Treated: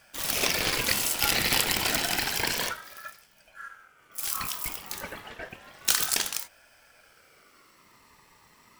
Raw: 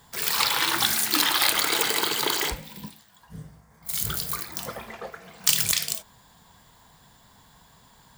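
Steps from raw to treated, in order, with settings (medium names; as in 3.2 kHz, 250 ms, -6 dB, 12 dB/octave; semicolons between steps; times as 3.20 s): tape speed -7%; ring modulator with a swept carrier 1.3 kHz, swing 20%, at 0.3 Hz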